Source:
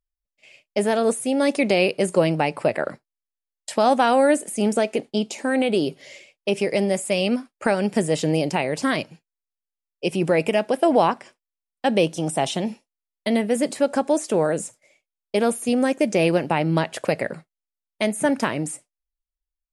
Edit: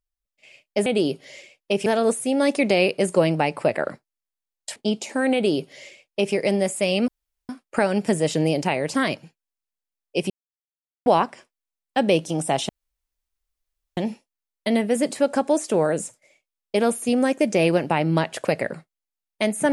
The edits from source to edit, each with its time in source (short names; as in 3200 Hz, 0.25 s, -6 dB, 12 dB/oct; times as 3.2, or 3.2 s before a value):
3.76–5.05 cut
5.63–6.63 copy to 0.86
7.37 insert room tone 0.41 s
10.18–10.94 mute
12.57 insert room tone 1.28 s